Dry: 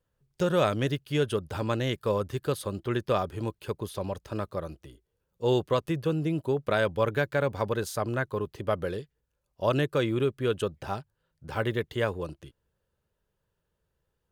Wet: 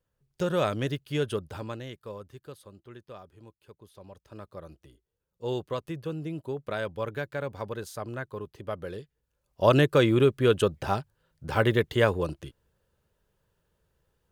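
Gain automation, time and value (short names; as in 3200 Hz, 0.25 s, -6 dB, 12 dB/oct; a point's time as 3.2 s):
1.39 s -2 dB
1.89 s -12 dB
3.05 s -19 dB
3.77 s -19 dB
4.81 s -6.5 dB
8.81 s -6.5 dB
9.64 s +5.5 dB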